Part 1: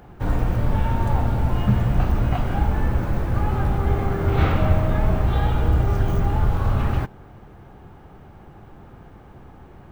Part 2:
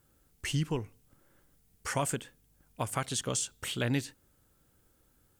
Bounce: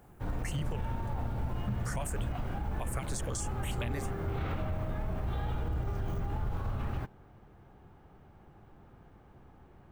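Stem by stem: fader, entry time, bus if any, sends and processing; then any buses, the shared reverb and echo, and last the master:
−12.0 dB, 0.00 s, no send, no processing
0.0 dB, 0.00 s, no send, step-sequenced phaser 9.7 Hz 650–1,500 Hz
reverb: not used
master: brickwall limiter −25.5 dBFS, peak gain reduction 8.5 dB

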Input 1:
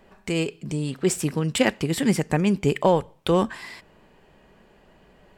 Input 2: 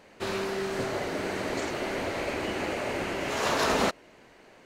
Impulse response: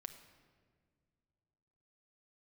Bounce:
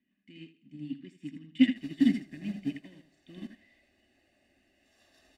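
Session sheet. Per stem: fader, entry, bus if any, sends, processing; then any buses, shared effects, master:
+3.0 dB, 0.00 s, no send, echo send −5 dB, bass and treble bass 0 dB, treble −4 dB; power curve on the samples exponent 0.7; formant filter i
−7.0 dB, 1.55 s, no send, no echo send, phaser with its sweep stopped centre 400 Hz, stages 4; notch filter 6,500 Hz, Q 19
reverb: not used
echo: repeating echo 80 ms, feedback 34%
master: comb filter 1.1 ms, depth 85%; expander for the loud parts 2.5 to 1, over −34 dBFS

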